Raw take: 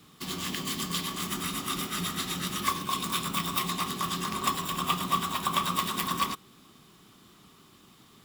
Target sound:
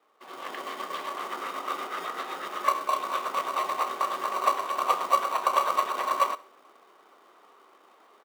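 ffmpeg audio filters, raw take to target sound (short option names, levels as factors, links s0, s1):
-filter_complex "[0:a]lowpass=1200,asplit=2[s0][s1];[s1]acrusher=samples=26:mix=1:aa=0.000001,volume=0.376[s2];[s0][s2]amix=inputs=2:normalize=0,highpass=f=500:w=0.5412,highpass=f=500:w=1.3066,asplit=2[s3][s4];[s4]aecho=0:1:67|134|201:0.1|0.039|0.0152[s5];[s3][s5]amix=inputs=2:normalize=0,dynaudnorm=f=150:g=5:m=3.35,volume=0.75"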